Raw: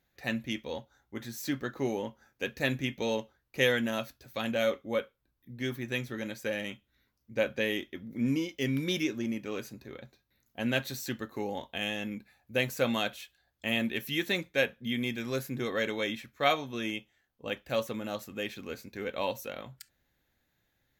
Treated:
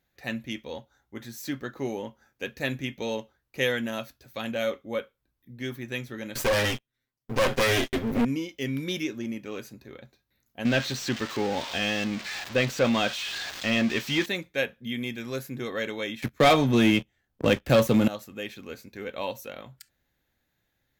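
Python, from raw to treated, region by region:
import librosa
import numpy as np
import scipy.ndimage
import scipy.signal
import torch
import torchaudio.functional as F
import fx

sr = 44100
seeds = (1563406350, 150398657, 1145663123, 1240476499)

y = fx.chain(x, sr, fx.lower_of_two(delay_ms=7.7),
    fx.leveller(passes=5), at=(6.35, 8.25))
y = fx.chain(y, sr, fx.crossing_spikes(level_db=-18.5),
    fx.leveller(passes=2),
    fx.air_absorb(metres=180.0), at=(10.65, 14.26))
y = fx.chain(y, sr, fx.low_shelf(hz=310.0, db=10.0),
    fx.leveller(passes=3),
    fx.band_squash(depth_pct=40), at=(16.22, 18.08))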